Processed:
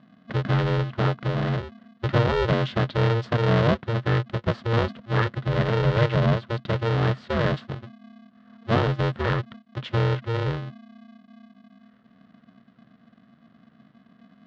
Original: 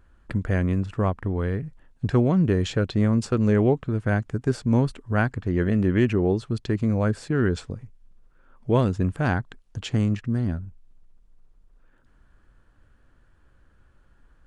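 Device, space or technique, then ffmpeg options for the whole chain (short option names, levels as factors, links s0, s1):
ring modulator pedal into a guitar cabinet: -af "aeval=exprs='val(0)*sgn(sin(2*PI*230*n/s))':c=same,highpass=79,equalizer=f=130:t=q:w=4:g=7,equalizer=f=210:t=q:w=4:g=4,equalizer=f=330:t=q:w=4:g=-8,equalizer=f=810:t=q:w=4:g=-6,equalizer=f=2400:t=q:w=4:g=-6,lowpass=f=3800:w=0.5412,lowpass=f=3800:w=1.3066"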